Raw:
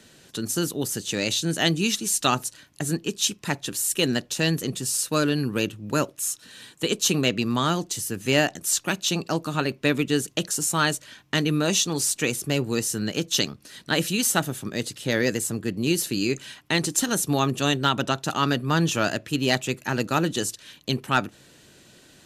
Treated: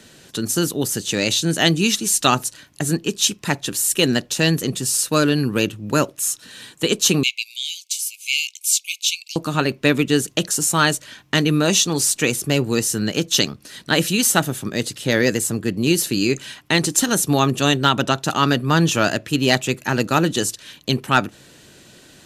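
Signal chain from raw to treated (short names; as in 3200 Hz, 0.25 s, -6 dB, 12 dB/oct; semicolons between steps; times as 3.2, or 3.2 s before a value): 7.23–9.36 brick-wall FIR high-pass 2100 Hz; gain +5.5 dB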